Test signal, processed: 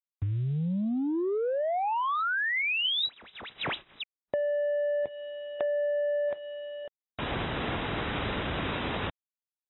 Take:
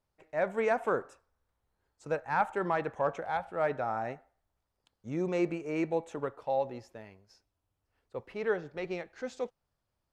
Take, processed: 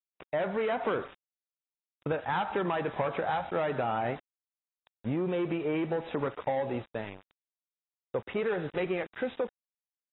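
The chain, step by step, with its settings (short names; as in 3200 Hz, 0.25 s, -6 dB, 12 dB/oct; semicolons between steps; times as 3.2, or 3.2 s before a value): median filter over 5 samples; in parallel at +2 dB: limiter -27.5 dBFS; on the sum: soft clip -22.5 dBFS; HPF 63 Hz 12 dB/oct; sample gate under -46 dBFS; compressor 12:1, threshold -32 dBFS; gain +5 dB; AAC 16 kbps 22050 Hz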